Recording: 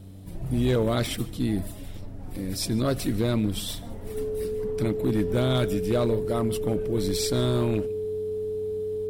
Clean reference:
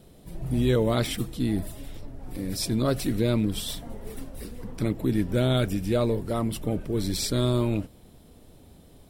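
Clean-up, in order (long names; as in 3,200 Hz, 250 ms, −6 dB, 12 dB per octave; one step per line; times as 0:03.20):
clipped peaks rebuilt −17 dBFS
hum removal 96 Hz, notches 3
notch filter 430 Hz, Q 30
echo removal 148 ms −23 dB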